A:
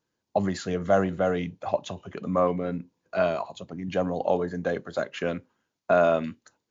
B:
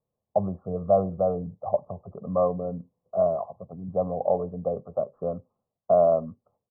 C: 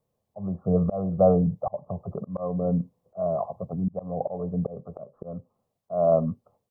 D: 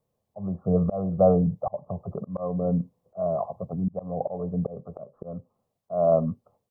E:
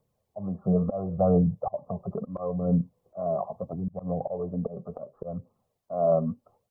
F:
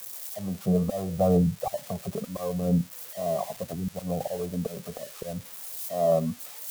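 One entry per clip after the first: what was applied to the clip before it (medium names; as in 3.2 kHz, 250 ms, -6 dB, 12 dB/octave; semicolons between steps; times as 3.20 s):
steep low-pass 1.1 kHz 72 dB/octave; comb 1.6 ms, depth 72%; trim -2.5 dB
dynamic bell 150 Hz, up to +7 dB, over -45 dBFS, Q 1.3; slow attack 419 ms; trim +6.5 dB
no audible change
in parallel at -1 dB: compression, threshold -33 dBFS, peak gain reduction 18 dB; on the sum: flange 0.73 Hz, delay 0 ms, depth 5.5 ms, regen +35%
zero-crossing glitches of -29 dBFS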